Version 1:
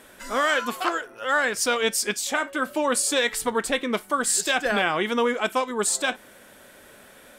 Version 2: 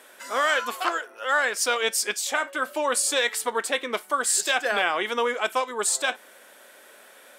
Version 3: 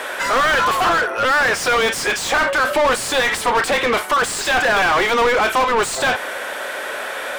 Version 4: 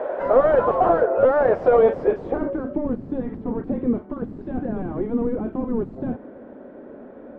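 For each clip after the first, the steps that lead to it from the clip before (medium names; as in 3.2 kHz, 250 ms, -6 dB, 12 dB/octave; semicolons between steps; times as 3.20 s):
high-pass 440 Hz 12 dB/octave
overdrive pedal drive 35 dB, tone 1.7 kHz, clips at -8.5 dBFS; trim +1 dB
low-pass sweep 590 Hz -> 250 Hz, 1.89–2.81 s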